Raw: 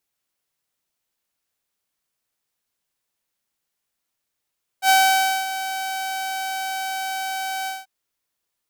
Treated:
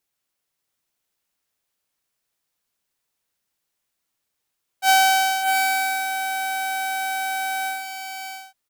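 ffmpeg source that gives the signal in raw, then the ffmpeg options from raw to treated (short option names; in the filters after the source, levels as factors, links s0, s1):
-f lavfi -i "aevalsrc='0.335*(2*mod(765*t,1)-1)':d=3.038:s=44100,afade=t=in:d=0.074,afade=t=out:st=0.074:d=0.56:silence=0.224,afade=t=out:st=2.85:d=0.188"
-filter_complex "[0:a]asplit=2[s0][s1];[s1]aecho=0:1:596|674:0.447|0.398[s2];[s0][s2]amix=inputs=2:normalize=0"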